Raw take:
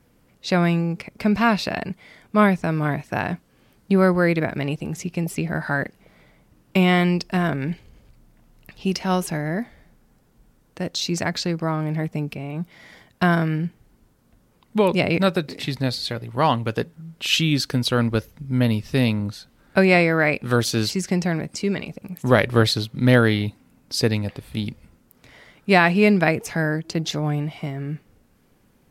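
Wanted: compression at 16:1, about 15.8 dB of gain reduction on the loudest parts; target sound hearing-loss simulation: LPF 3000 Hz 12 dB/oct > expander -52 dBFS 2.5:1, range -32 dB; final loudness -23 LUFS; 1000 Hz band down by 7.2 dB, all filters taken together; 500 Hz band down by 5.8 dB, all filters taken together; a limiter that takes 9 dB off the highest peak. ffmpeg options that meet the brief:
-af "equalizer=f=500:t=o:g=-5.5,equalizer=f=1k:t=o:g=-8,acompressor=threshold=-29dB:ratio=16,alimiter=level_in=2dB:limit=-24dB:level=0:latency=1,volume=-2dB,lowpass=3k,agate=range=-32dB:threshold=-52dB:ratio=2.5,volume=14dB"

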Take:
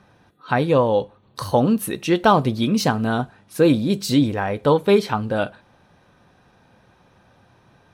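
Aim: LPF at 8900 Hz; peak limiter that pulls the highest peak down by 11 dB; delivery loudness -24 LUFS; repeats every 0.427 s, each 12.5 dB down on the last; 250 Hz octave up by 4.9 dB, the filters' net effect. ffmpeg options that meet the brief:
-af "lowpass=8.9k,equalizer=f=250:t=o:g=6,alimiter=limit=-13dB:level=0:latency=1,aecho=1:1:427|854|1281:0.237|0.0569|0.0137,volume=-1.5dB"

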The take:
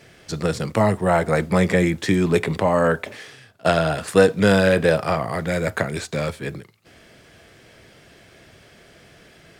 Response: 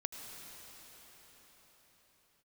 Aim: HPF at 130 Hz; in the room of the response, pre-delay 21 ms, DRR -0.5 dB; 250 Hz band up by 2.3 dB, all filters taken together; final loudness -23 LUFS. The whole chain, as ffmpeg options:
-filter_complex "[0:a]highpass=130,equalizer=f=250:t=o:g=4.5,asplit=2[a][b];[1:a]atrim=start_sample=2205,adelay=21[c];[b][c]afir=irnorm=-1:irlink=0,volume=0.5dB[d];[a][d]amix=inputs=2:normalize=0,volume=-7dB"

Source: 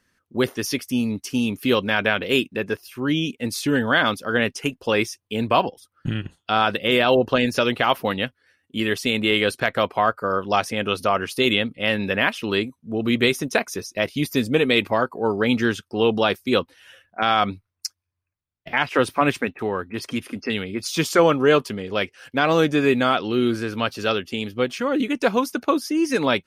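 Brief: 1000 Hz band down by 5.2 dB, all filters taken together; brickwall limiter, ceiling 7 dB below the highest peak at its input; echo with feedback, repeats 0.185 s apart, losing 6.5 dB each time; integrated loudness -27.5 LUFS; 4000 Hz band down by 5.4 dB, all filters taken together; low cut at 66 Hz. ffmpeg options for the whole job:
-af "highpass=66,equalizer=f=1k:t=o:g=-7,equalizer=f=4k:t=o:g=-7,alimiter=limit=-13.5dB:level=0:latency=1,aecho=1:1:185|370|555|740|925|1110:0.473|0.222|0.105|0.0491|0.0231|0.0109,volume=-2dB"

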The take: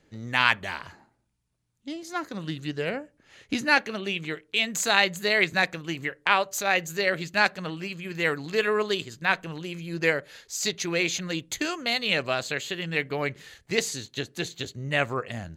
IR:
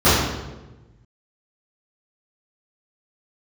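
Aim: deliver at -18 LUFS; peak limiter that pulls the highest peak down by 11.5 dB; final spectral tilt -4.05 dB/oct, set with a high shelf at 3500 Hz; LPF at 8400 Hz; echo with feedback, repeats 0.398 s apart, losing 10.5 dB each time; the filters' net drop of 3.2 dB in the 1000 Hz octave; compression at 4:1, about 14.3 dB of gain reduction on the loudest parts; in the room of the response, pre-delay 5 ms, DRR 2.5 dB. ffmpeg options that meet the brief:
-filter_complex "[0:a]lowpass=8.4k,equalizer=f=1k:t=o:g=-5,highshelf=f=3.5k:g=7,acompressor=threshold=-33dB:ratio=4,alimiter=limit=-24dB:level=0:latency=1,aecho=1:1:398|796|1194:0.299|0.0896|0.0269,asplit=2[a][b];[1:a]atrim=start_sample=2205,adelay=5[c];[b][c]afir=irnorm=-1:irlink=0,volume=-28dB[d];[a][d]amix=inputs=2:normalize=0,volume=16.5dB"

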